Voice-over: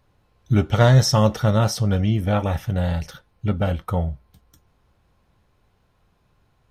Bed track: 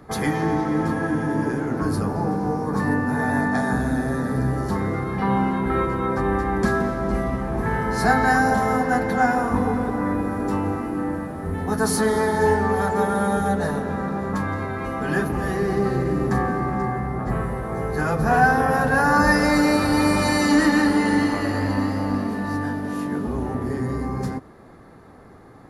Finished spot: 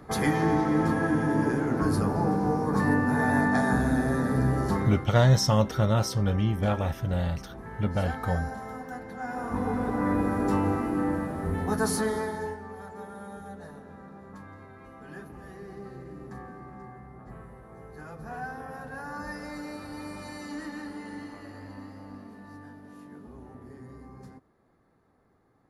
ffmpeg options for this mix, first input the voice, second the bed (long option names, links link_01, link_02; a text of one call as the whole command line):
ffmpeg -i stem1.wav -i stem2.wav -filter_complex "[0:a]adelay=4350,volume=-5.5dB[link_01];[1:a]volume=14.5dB,afade=type=out:start_time=4.71:duration=0.41:silence=0.158489,afade=type=in:start_time=9.22:duration=1:silence=0.149624,afade=type=out:start_time=11.41:duration=1.16:silence=0.112202[link_02];[link_01][link_02]amix=inputs=2:normalize=0" out.wav